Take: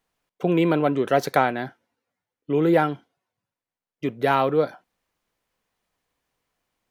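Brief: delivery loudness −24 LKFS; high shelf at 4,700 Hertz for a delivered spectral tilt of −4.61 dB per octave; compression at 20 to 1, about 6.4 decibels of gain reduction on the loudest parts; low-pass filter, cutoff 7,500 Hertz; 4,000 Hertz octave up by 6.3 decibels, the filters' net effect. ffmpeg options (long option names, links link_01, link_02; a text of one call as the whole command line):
ffmpeg -i in.wav -af "lowpass=7500,equalizer=frequency=4000:width_type=o:gain=4.5,highshelf=frequency=4700:gain=8.5,acompressor=threshold=-19dB:ratio=20,volume=2.5dB" out.wav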